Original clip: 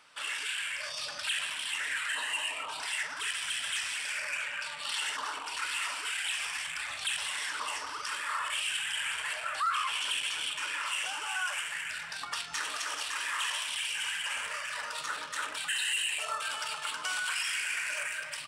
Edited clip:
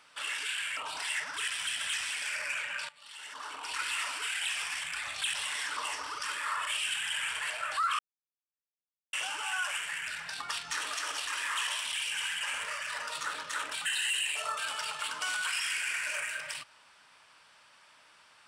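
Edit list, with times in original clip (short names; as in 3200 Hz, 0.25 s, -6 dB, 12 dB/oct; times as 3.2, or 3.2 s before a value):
0.77–2.6 cut
4.72–5.55 fade in quadratic, from -19 dB
9.82–10.96 mute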